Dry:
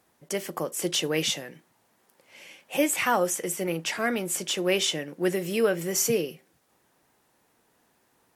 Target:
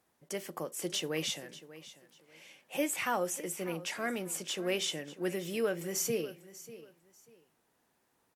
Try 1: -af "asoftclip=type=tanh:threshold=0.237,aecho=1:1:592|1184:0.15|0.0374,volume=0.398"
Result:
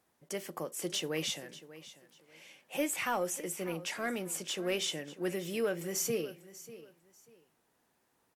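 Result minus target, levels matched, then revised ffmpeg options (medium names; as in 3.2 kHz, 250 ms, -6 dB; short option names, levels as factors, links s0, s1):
saturation: distortion +12 dB
-af "asoftclip=type=tanh:threshold=0.531,aecho=1:1:592|1184:0.15|0.0374,volume=0.398"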